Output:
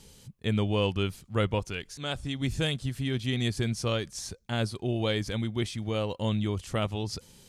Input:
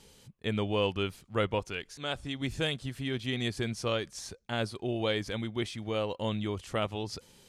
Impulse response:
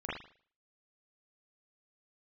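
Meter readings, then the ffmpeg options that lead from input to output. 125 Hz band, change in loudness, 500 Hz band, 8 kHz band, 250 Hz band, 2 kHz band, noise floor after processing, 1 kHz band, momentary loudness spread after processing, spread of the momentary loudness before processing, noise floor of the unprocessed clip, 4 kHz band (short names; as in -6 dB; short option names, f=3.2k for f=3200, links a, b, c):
+6.5 dB, +2.5 dB, +0.5 dB, +4.5 dB, +3.5 dB, +0.5 dB, -58 dBFS, 0.0 dB, 7 LU, 6 LU, -61 dBFS, +1.5 dB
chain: -af "bass=f=250:g=7,treble=f=4k:g=5"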